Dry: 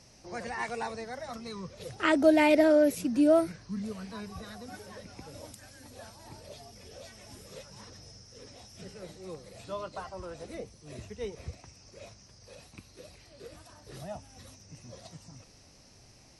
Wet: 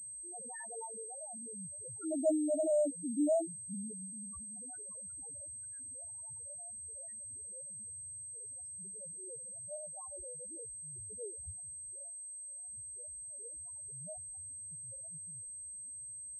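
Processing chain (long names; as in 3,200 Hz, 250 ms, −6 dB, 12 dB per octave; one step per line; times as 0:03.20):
0:12.03–0:12.69: formant filter a
spectral peaks only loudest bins 1
switching amplifier with a slow clock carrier 8,300 Hz
level −2.5 dB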